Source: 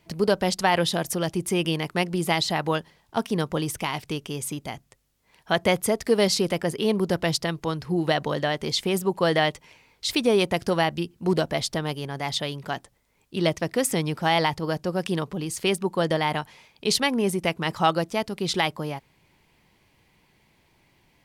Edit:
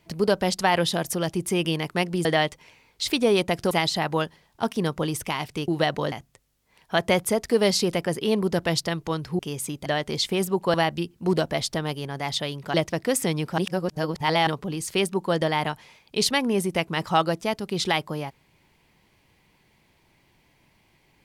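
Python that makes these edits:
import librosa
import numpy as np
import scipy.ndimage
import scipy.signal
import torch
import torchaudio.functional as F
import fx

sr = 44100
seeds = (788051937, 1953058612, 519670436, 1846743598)

y = fx.edit(x, sr, fx.swap(start_s=4.22, length_s=0.47, other_s=7.96, other_length_s=0.44),
    fx.move(start_s=9.28, length_s=1.46, to_s=2.25),
    fx.cut(start_s=12.74, length_s=0.69),
    fx.reverse_span(start_s=14.27, length_s=0.89), tone=tone)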